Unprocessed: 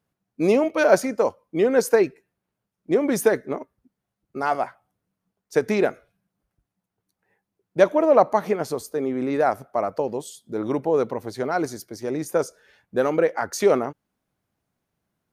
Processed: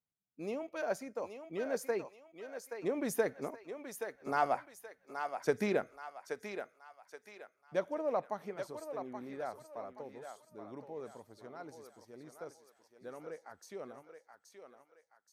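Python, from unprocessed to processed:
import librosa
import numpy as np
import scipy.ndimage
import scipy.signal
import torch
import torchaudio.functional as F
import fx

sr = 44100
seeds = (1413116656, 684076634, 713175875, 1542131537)

y = fx.doppler_pass(x, sr, speed_mps=8, closest_m=8.2, pass_at_s=4.68)
y = fx.peak_eq(y, sr, hz=350.0, db=-3.0, octaves=0.54)
y = fx.echo_thinned(y, sr, ms=826, feedback_pct=42, hz=550.0, wet_db=-6.0)
y = F.gain(torch.from_numpy(y), -7.0).numpy()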